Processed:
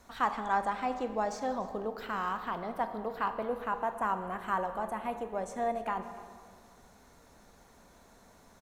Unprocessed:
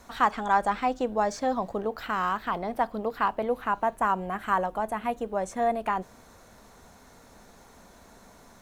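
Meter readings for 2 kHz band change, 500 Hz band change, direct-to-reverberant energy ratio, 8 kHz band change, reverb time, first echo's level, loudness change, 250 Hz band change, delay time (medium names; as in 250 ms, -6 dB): -6.0 dB, -6.0 dB, 8.5 dB, -6.0 dB, 2.0 s, -20.5 dB, -6.0 dB, -6.0 dB, 291 ms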